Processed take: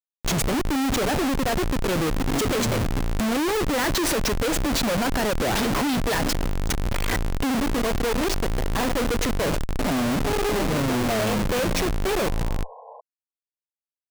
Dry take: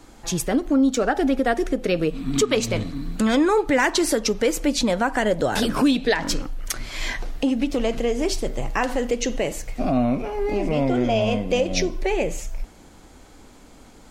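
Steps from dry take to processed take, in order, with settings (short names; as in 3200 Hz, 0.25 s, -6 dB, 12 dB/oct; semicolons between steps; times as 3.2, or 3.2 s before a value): Schmitt trigger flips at -29 dBFS; painted sound noise, 12.18–13.01, 440–1100 Hz -43 dBFS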